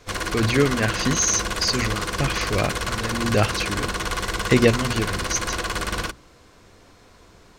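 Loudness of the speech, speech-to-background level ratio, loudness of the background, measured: -23.5 LUFS, 3.0 dB, -26.5 LUFS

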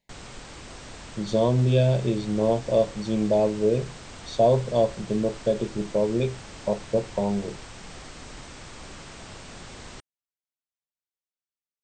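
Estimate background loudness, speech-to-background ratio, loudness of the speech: -42.0 LUFS, 17.5 dB, -24.5 LUFS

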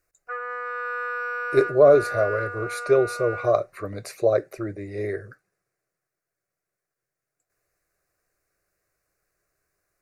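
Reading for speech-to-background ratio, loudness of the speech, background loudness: 8.0 dB, -22.5 LUFS, -30.5 LUFS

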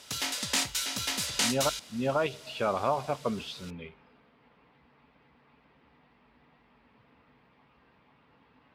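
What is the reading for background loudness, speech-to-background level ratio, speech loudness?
-29.5 LUFS, -3.0 dB, -32.5 LUFS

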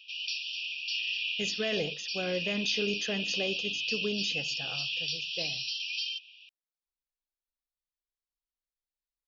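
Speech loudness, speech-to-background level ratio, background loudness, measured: -35.5 LUFS, -3.5 dB, -32.0 LUFS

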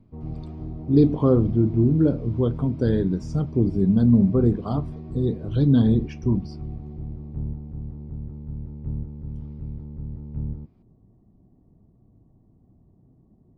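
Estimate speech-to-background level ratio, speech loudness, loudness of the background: 13.5 dB, -21.5 LUFS, -35.0 LUFS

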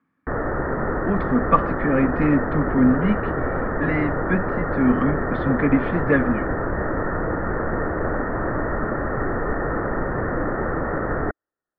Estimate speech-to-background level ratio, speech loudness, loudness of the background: 2.5 dB, -22.5 LUFS, -25.0 LUFS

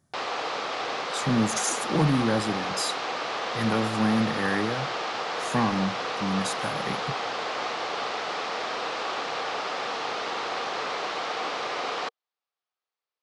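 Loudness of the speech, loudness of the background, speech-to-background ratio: -28.0 LUFS, -30.0 LUFS, 2.0 dB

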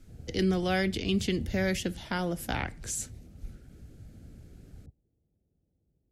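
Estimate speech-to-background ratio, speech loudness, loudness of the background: 17.5 dB, -31.0 LUFS, -48.5 LUFS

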